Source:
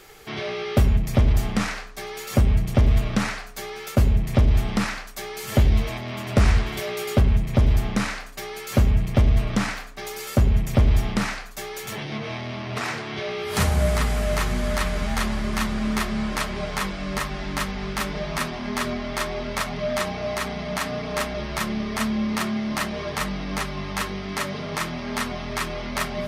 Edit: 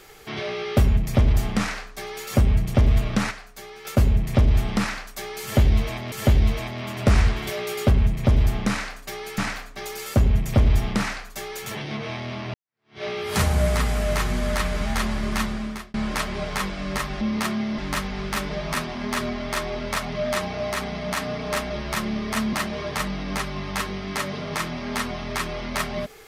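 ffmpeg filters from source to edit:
-filter_complex "[0:a]asplit=10[a][b][c][d][e][f][g][h][i][j];[a]atrim=end=3.312[k];[b]atrim=start=3.308:end=3.852,asetpts=PTS-STARTPTS,volume=-6.5dB[l];[c]atrim=start=3.848:end=6.122[m];[d]atrim=start=5.418:end=8.682[n];[e]atrim=start=9.588:end=12.75,asetpts=PTS-STARTPTS,afade=t=out:st=3.158:d=0.004:c=hsin[o];[f]atrim=start=12.75:end=16.15,asetpts=PTS-STARTPTS,afade=t=in:d=0.49:c=exp,afade=t=out:st=2.87:d=0.53[p];[g]atrim=start=16.15:end=17.422,asetpts=PTS-STARTPTS,afade=t=in:d=0.004:c=hsin[q];[h]atrim=start=22.168:end=22.742[r];[i]atrim=start=17.418:end=22.172[s];[j]atrim=start=22.738[t];[k][l]acrossfade=d=0.004:c1=hsin:c2=hsin[u];[u][m]acrossfade=d=0.004:c1=hsin:c2=hsin[v];[v][n]acrossfade=d=0.004:c1=hsin:c2=hsin[w];[o][p][q]concat=n=3:v=0:a=1[x];[w][x]acrossfade=d=0.004:c1=hsin:c2=hsin[y];[y][r]acrossfade=d=0.004:c1=hsin:c2=hsin[z];[z][s]acrossfade=d=0.004:c1=hsin:c2=hsin[aa];[aa][t]acrossfade=d=0.004:c1=hsin:c2=hsin"

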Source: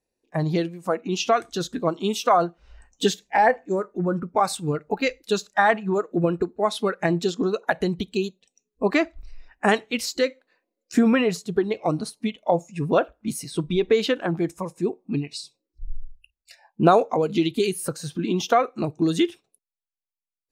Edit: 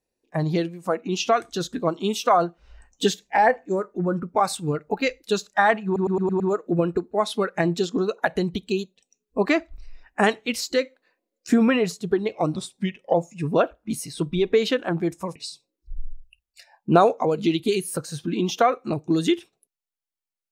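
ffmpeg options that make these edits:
-filter_complex "[0:a]asplit=9[a][b][c][d][e][f][g][h][i];[a]atrim=end=5.962[j];[b]atrim=start=5.848:end=5.962[k];[c]atrim=start=5.848:end=5.962[l];[d]atrim=start=5.848:end=5.962[m];[e]atrim=start=5.848:end=5.962[n];[f]atrim=start=5.848:end=12.004[o];[g]atrim=start=12:end=12.51,asetpts=PTS-STARTPTS,asetrate=38367,aresample=44100[p];[h]atrim=start=12.506:end=14.732[q];[i]atrim=start=15.268[r];[j][k]acrossfade=d=0.004:c1=hsin:c2=hsin[s];[s][l]acrossfade=d=0.004:c1=hsin:c2=hsin[t];[t][m]acrossfade=d=0.004:c1=hsin:c2=hsin[u];[u][n]acrossfade=d=0.004:c1=hsin:c2=hsin[v];[v][o]acrossfade=d=0.004:c1=hsin:c2=hsin[w];[w][p]acrossfade=d=0.004:c1=hsin:c2=hsin[x];[x][q]acrossfade=d=0.004:c1=hsin:c2=hsin[y];[y][r]acrossfade=d=0.004:c1=hsin:c2=hsin"

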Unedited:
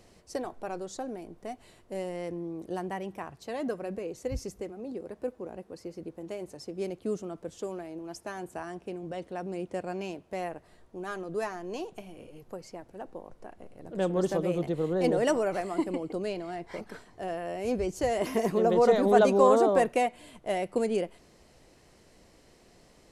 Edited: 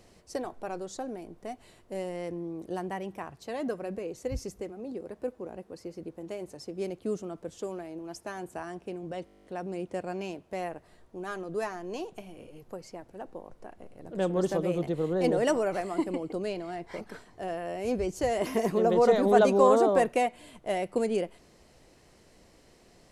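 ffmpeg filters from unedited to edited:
-filter_complex "[0:a]asplit=11[a][b][c][d][e][f][g][h][i][j][k];[a]atrim=end=9.272[l];[b]atrim=start=9.248:end=9.272[m];[c]atrim=start=9.248:end=9.272[n];[d]atrim=start=9.248:end=9.272[o];[e]atrim=start=9.248:end=9.272[p];[f]atrim=start=9.248:end=9.272[q];[g]atrim=start=9.248:end=9.272[r];[h]atrim=start=9.248:end=9.272[s];[i]atrim=start=9.248:end=9.272[t];[j]atrim=start=9.248:end=9.272[u];[k]atrim=start=9.248[v];[l][m]acrossfade=d=0.004:c1=hsin:c2=hsin[w];[w][n]acrossfade=d=0.004:c1=hsin:c2=hsin[x];[x][o]acrossfade=d=0.004:c1=hsin:c2=hsin[y];[y][p]acrossfade=d=0.004:c1=hsin:c2=hsin[z];[z][q]acrossfade=d=0.004:c1=hsin:c2=hsin[aa];[aa][r]acrossfade=d=0.004:c1=hsin:c2=hsin[ab];[ab][s]acrossfade=d=0.004:c1=hsin:c2=hsin[ac];[ac][t]acrossfade=d=0.004:c1=hsin:c2=hsin[ad];[ad][u]acrossfade=d=0.004:c1=hsin:c2=hsin[ae];[ae][v]acrossfade=d=0.004:c1=hsin:c2=hsin"

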